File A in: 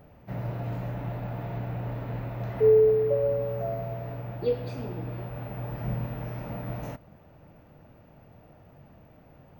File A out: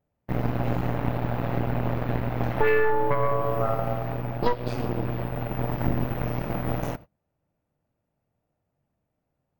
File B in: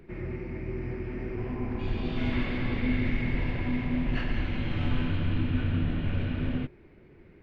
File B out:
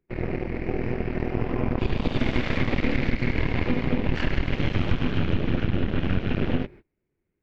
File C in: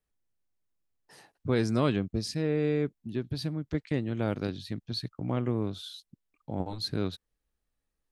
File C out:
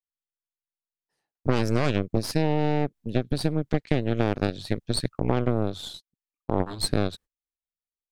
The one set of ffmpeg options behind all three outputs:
-af "aeval=exprs='0.266*(cos(1*acos(clip(val(0)/0.266,-1,1)))-cos(1*PI/2))+0.00841*(cos(3*acos(clip(val(0)/0.266,-1,1)))-cos(3*PI/2))+0.015*(cos(4*acos(clip(val(0)/0.266,-1,1)))-cos(4*PI/2))+0.119*(cos(6*acos(clip(val(0)/0.266,-1,1)))-cos(6*PI/2))':c=same,agate=range=0.0316:threshold=0.00631:ratio=16:detection=peak,acompressor=threshold=0.0708:ratio=6,volume=1.88"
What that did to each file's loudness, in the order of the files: +1.5 LU, +4.5 LU, +4.5 LU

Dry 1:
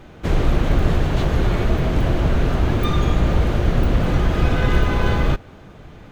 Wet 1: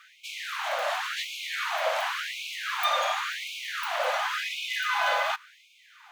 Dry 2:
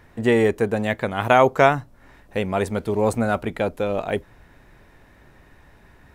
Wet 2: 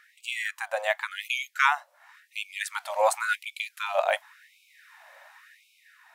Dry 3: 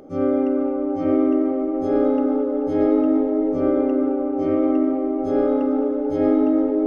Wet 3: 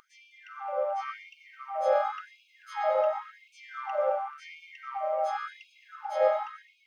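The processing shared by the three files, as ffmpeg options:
-af "dynaudnorm=f=220:g=7:m=1.78,afftfilt=real='re*gte(b*sr/1024,510*pow(2200/510,0.5+0.5*sin(2*PI*0.92*pts/sr)))':imag='im*gte(b*sr/1024,510*pow(2200/510,0.5+0.5*sin(2*PI*0.92*pts/sr)))':win_size=1024:overlap=0.75"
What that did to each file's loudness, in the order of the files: -8.5 LU, -7.0 LU, -10.5 LU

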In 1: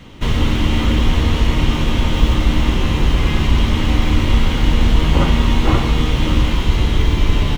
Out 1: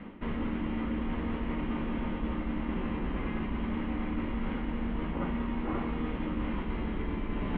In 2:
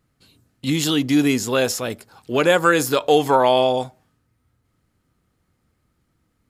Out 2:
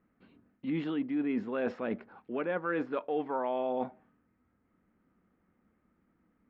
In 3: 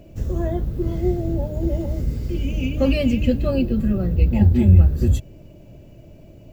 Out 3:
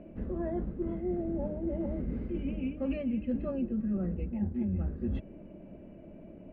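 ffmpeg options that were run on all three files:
-af "lowpass=f=2200:w=0.5412,lowpass=f=2200:w=1.3066,lowshelf=f=160:t=q:w=3:g=-6.5,areverse,acompressor=threshold=0.0447:ratio=6,areverse,volume=0.708"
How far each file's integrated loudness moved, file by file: -17.0 LU, -15.5 LU, -14.0 LU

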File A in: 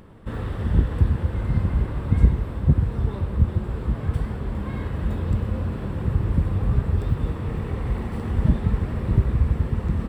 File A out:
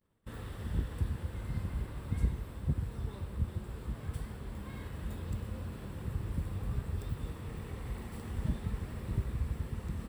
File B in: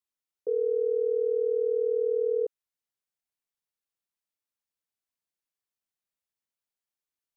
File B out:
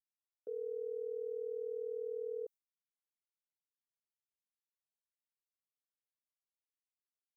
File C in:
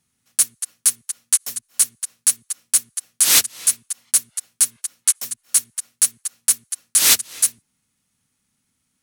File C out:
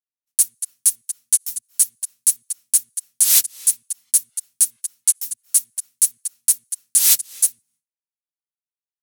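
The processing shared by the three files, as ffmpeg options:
-af "crystalizer=i=4:c=0,agate=range=0.0224:threshold=0.0158:ratio=3:detection=peak,volume=0.188"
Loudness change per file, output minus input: -14.5 LU, -14.0 LU, +0.5 LU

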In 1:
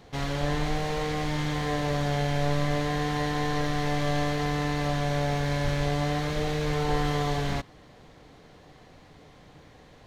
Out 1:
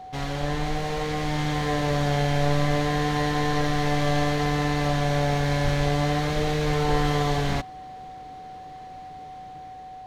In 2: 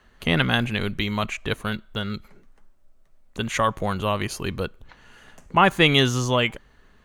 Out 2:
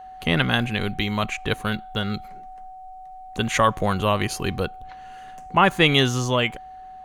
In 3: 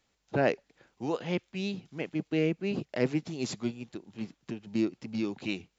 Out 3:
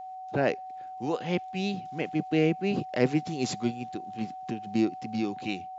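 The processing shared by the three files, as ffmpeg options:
-af "dynaudnorm=f=500:g=5:m=1.5,aeval=exprs='val(0)+0.0126*sin(2*PI*750*n/s)':c=same"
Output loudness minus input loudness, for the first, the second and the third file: +3.5 LU, +1.0 LU, +3.0 LU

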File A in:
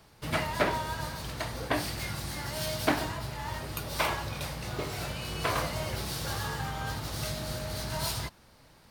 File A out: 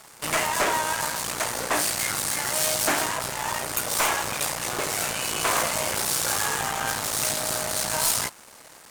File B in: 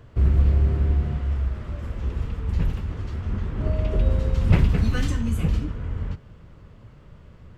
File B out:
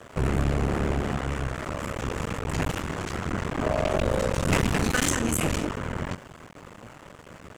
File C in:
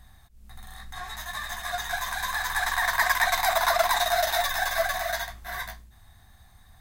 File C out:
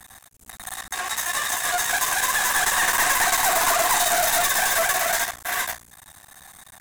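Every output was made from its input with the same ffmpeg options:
-filter_complex "[0:a]aeval=exprs='max(val(0),0)':c=same,asplit=2[s0][s1];[s1]highpass=f=720:p=1,volume=25.1,asoftclip=type=tanh:threshold=0.473[s2];[s0][s2]amix=inputs=2:normalize=0,lowpass=f=5000:p=1,volume=0.501,highshelf=f=5800:t=q:w=1.5:g=9,volume=0.562"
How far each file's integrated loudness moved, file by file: +8.5 LU, -3.0 LU, +5.5 LU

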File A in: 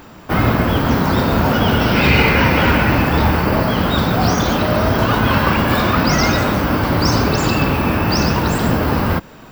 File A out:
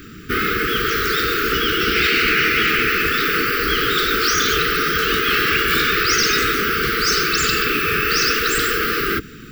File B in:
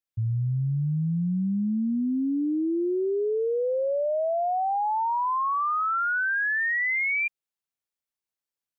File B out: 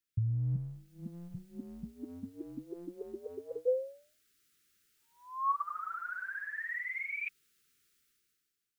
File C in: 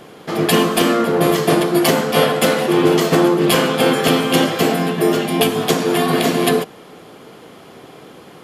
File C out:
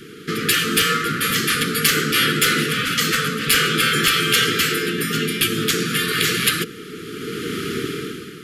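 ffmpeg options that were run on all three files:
-af "asuperstop=centerf=750:order=20:qfactor=1,dynaudnorm=f=130:g=11:m=6.31,afftfilt=real='re*lt(hypot(re,im),0.631)':imag='im*lt(hypot(re,im),0.631)':win_size=1024:overlap=0.75,acontrast=58,volume=0.668"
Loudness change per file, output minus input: -1.5 LU, -12.5 LU, -2.5 LU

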